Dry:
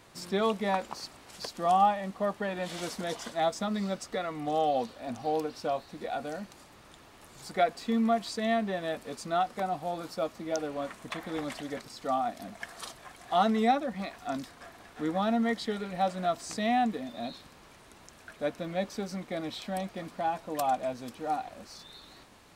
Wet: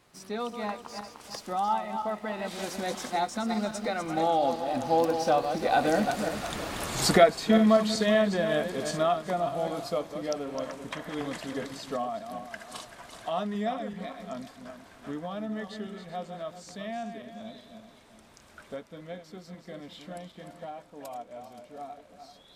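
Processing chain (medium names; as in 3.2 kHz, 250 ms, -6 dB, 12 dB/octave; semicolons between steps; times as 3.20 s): backward echo that repeats 181 ms, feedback 51%, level -8 dB; recorder AGC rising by 6.4 dB/s; Doppler pass-by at 6.57 s, 24 m/s, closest 29 m; trim +8.5 dB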